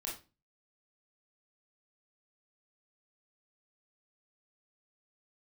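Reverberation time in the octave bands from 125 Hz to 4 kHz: 0.50, 0.45, 0.30, 0.30, 0.25, 0.25 seconds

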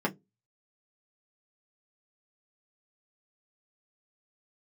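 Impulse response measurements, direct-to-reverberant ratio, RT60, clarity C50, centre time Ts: −2.5 dB, 0.20 s, 24.5 dB, 7 ms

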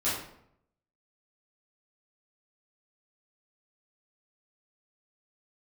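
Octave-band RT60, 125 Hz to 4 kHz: 0.90, 0.80, 0.75, 0.70, 0.60, 0.45 seconds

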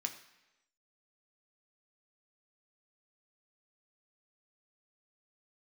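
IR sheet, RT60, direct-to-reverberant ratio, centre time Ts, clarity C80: 1.0 s, 3.5 dB, 14 ms, 13.0 dB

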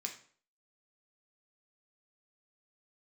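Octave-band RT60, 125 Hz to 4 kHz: 0.50, 0.50, 0.50, 0.50, 0.45, 0.40 seconds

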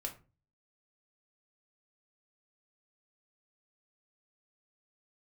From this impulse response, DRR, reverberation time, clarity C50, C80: 1.5 dB, 0.35 s, 13.0 dB, 18.5 dB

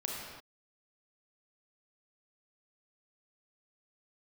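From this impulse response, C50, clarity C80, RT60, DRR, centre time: −0.5 dB, 1.5 dB, non-exponential decay, −2.5 dB, 85 ms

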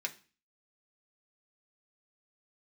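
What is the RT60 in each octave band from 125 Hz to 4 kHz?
0.45, 0.45, 0.35, 0.35, 0.40, 0.35 seconds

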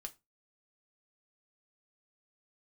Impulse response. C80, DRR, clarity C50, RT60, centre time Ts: 28.0 dB, 4.5 dB, 20.5 dB, 0.25 s, 4 ms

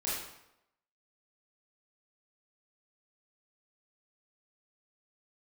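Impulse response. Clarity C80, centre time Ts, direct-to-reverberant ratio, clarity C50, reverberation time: 3.5 dB, 69 ms, −8.5 dB, −0.5 dB, 0.85 s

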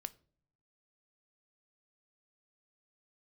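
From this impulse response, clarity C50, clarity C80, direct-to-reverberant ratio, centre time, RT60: 21.5 dB, 26.0 dB, 13.5 dB, 2 ms, non-exponential decay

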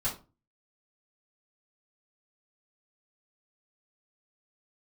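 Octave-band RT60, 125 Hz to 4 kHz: 0.50, 0.40, 0.35, 0.30, 0.25, 0.20 seconds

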